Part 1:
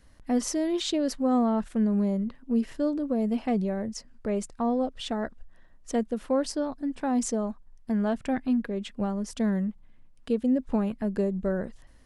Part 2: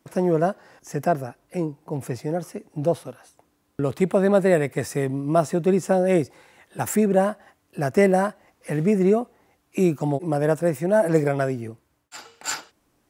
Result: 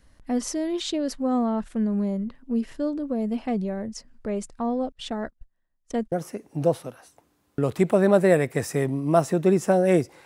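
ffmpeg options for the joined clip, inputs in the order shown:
ffmpeg -i cue0.wav -i cue1.wav -filter_complex "[0:a]asettb=1/sr,asplit=3[link_01][link_02][link_03];[link_01]atrim=end=4.924[link_04];[link_02]atrim=start=4.92:end=6.12,asetpts=PTS-STARTPTS,afade=type=in:duration=0.004:curve=qsin,afade=type=out:start_time=1.196:duration=0.004:curve=qsin,agate=range=-22dB:threshold=-40dB:ratio=16:release=100:detection=peak[link_05];[link_03]atrim=start=6.116[link_06];[link_04][link_05]acrossfade=duration=0.004:curve1=hsin:curve2=qsin[link_07];[link_07][link_06]acrossfade=duration=0.004:curve1=qsin:curve2=hsin,apad=whole_dur=10.25,atrim=end=10.25,atrim=end=6.122[link_08];[1:a]atrim=start=2.328:end=6.46[link_09];[link_08][link_09]acrossfade=duration=0.004:curve1=hsin:curve2=hsin" out.wav

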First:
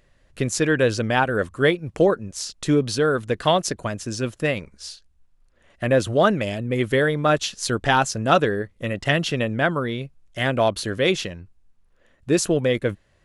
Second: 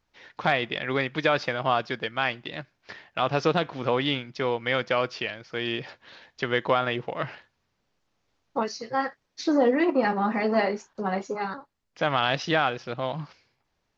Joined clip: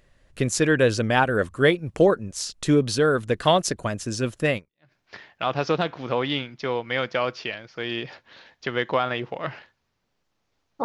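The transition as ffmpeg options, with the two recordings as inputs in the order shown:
ffmpeg -i cue0.wav -i cue1.wav -filter_complex "[0:a]apad=whole_dur=10.84,atrim=end=10.84,atrim=end=4.92,asetpts=PTS-STARTPTS[link_01];[1:a]atrim=start=2.32:end=8.6,asetpts=PTS-STARTPTS[link_02];[link_01][link_02]acrossfade=duration=0.36:curve1=exp:curve2=exp" out.wav

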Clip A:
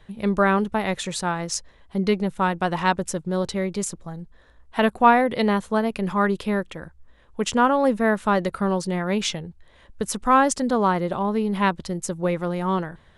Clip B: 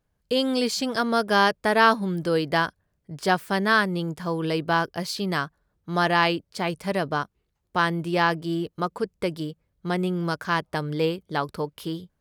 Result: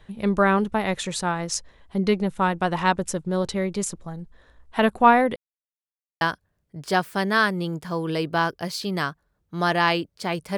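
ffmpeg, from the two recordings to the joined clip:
ffmpeg -i cue0.wav -i cue1.wav -filter_complex "[0:a]apad=whole_dur=10.57,atrim=end=10.57,asplit=2[link_01][link_02];[link_01]atrim=end=5.36,asetpts=PTS-STARTPTS,afade=type=out:start_time=5.356:duration=0.004:curve=hsin[link_03];[link_02]atrim=start=5.36:end=6.21,asetpts=PTS-STARTPTS,volume=0[link_04];[1:a]atrim=start=2.56:end=6.92,asetpts=PTS-STARTPTS,afade=type=in:duration=0.004:curve=hsin[link_05];[link_03][link_04][link_05]concat=n=3:v=0:a=1" out.wav

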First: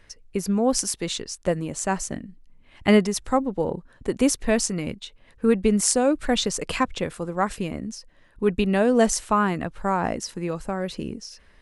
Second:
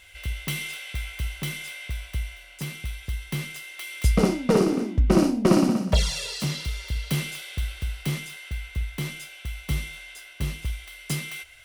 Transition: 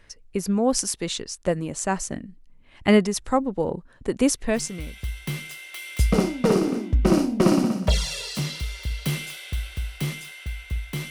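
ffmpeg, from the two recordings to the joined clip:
ffmpeg -i cue0.wav -i cue1.wav -filter_complex "[0:a]apad=whole_dur=11.1,atrim=end=11.1,atrim=end=5.05,asetpts=PTS-STARTPTS[link_01];[1:a]atrim=start=2.4:end=9.15,asetpts=PTS-STARTPTS[link_02];[link_01][link_02]acrossfade=duration=0.7:curve1=tri:curve2=tri" out.wav

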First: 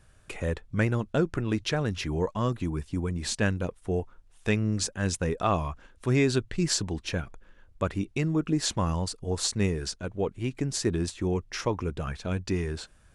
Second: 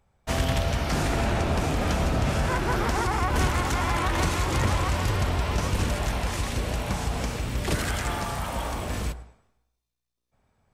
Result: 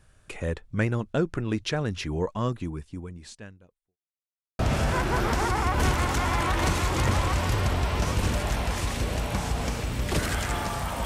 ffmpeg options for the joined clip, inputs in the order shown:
ffmpeg -i cue0.wav -i cue1.wav -filter_complex "[0:a]apad=whole_dur=11.05,atrim=end=11.05,asplit=2[link_01][link_02];[link_01]atrim=end=3.98,asetpts=PTS-STARTPTS,afade=type=out:start_time=2.48:duration=1.5:curve=qua[link_03];[link_02]atrim=start=3.98:end=4.59,asetpts=PTS-STARTPTS,volume=0[link_04];[1:a]atrim=start=2.15:end=8.61,asetpts=PTS-STARTPTS,afade=type=in:duration=0.004:curve=hsin[link_05];[link_03][link_04][link_05]concat=n=3:v=0:a=1" out.wav

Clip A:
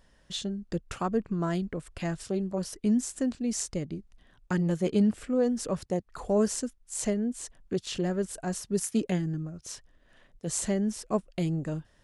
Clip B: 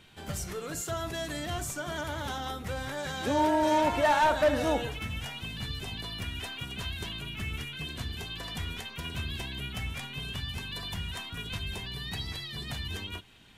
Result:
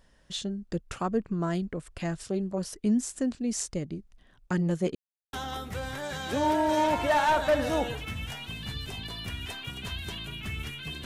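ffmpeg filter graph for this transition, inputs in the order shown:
ffmpeg -i cue0.wav -i cue1.wav -filter_complex "[0:a]apad=whole_dur=11.05,atrim=end=11.05,asplit=2[link_01][link_02];[link_01]atrim=end=4.95,asetpts=PTS-STARTPTS,afade=type=out:start_time=4.946:duration=0.004:curve=hsin[link_03];[link_02]atrim=start=4.95:end=5.33,asetpts=PTS-STARTPTS,volume=0[link_04];[1:a]atrim=start=2.27:end=7.99,asetpts=PTS-STARTPTS,afade=type=in:duration=0.004:curve=hsin[link_05];[link_03][link_04][link_05]concat=n=3:v=0:a=1" out.wav

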